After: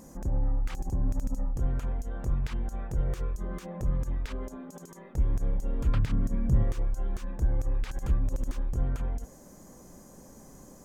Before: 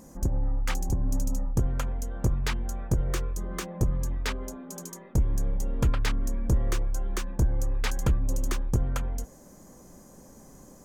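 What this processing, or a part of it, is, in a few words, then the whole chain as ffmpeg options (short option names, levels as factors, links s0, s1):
de-esser from a sidechain: -filter_complex "[0:a]asplit=2[s0][s1];[s1]highpass=f=4300:w=0.5412,highpass=f=4300:w=1.3066,apad=whole_len=478184[s2];[s0][s2]sidechaincompress=threshold=0.00355:ratio=6:attack=0.83:release=38,asettb=1/sr,asplit=3[s3][s4][s5];[s3]atrim=end=5.944[s6];[s4]atrim=start=5.94:end=6.64,asetpts=PTS-STARTPTS,afade=t=in:d=0.004:c=qsin,afade=t=out:st=0.696:d=0.004:c=qsin,equalizer=f=140:t=o:w=1.1:g=13.5[s7];[s5]atrim=start=6.636[s8];[s6][s7]acrossfade=d=0.004:c1=hsin:c2=qsin[s9];[s9][s8]acrossfade=d=0.004:c1=qsin:c2=hsin"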